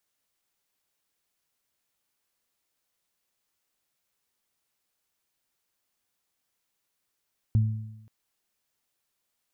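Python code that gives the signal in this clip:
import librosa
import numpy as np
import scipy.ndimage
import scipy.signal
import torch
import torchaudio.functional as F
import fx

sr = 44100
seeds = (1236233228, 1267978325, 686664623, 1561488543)

y = fx.additive(sr, length_s=0.53, hz=109.0, level_db=-16.5, upper_db=(-13.5,), decay_s=0.9, upper_decays_s=(1.0,))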